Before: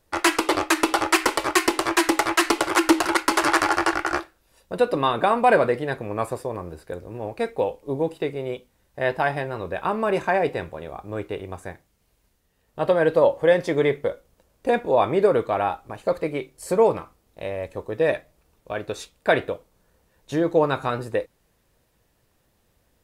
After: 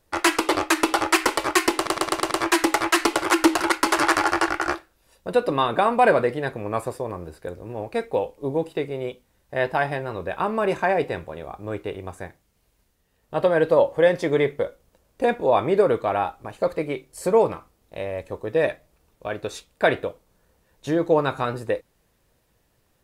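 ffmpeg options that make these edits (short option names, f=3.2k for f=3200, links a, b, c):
-filter_complex "[0:a]asplit=6[a][b][c][d][e][f];[a]atrim=end=1.872[g];[b]atrim=start=1.758:end=1.872[h];[c]atrim=start=1.758:end=1.872[i];[d]atrim=start=1.758:end=1.872[j];[e]atrim=start=1.758:end=1.872[k];[f]atrim=start=1.758[l];[g][h]acrossfade=d=0.004:c1=hsin:c2=hsin[m];[m][i]acrossfade=d=0.004:c1=hsin:c2=hsin[n];[n][j]acrossfade=d=0.004:c1=hsin:c2=hsin[o];[o][k]acrossfade=d=0.004:c1=hsin:c2=hsin[p];[p][l]acrossfade=d=0.004:c1=hsin:c2=hsin"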